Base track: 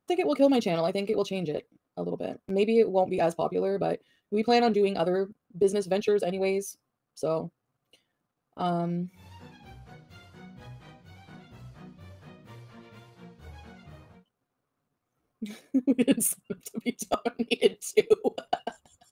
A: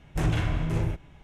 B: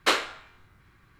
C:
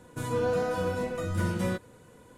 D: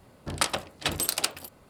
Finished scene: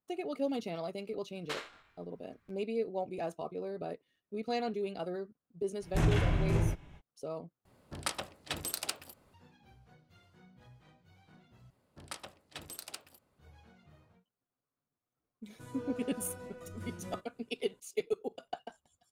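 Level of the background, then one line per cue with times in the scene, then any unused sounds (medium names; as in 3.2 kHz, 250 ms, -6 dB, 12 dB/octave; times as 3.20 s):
base track -12 dB
1.43 s: add B -14 dB + transformer saturation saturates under 1.9 kHz
5.79 s: add A -2.5 dB, fades 0.05 s
7.65 s: replace with D -9.5 dB
11.70 s: replace with D -18 dB + high-pass 42 Hz
15.43 s: add C -16 dB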